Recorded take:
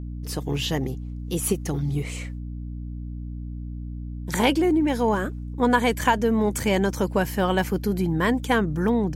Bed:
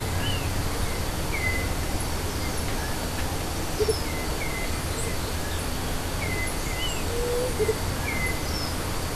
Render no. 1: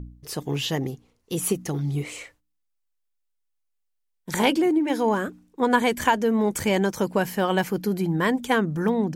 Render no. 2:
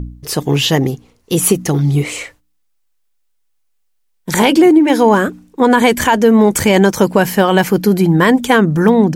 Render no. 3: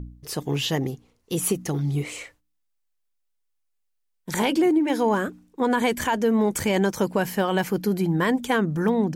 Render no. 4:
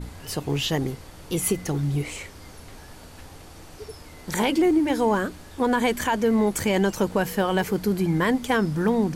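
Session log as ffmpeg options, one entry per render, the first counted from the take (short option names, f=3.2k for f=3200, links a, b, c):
-af "bandreject=f=60:t=h:w=4,bandreject=f=120:t=h:w=4,bandreject=f=180:t=h:w=4,bandreject=f=240:t=h:w=4,bandreject=f=300:t=h:w=4"
-af "alimiter=level_in=13dB:limit=-1dB:release=50:level=0:latency=1"
-af "volume=-11.5dB"
-filter_complex "[1:a]volume=-15.5dB[a];[0:a][a]amix=inputs=2:normalize=0"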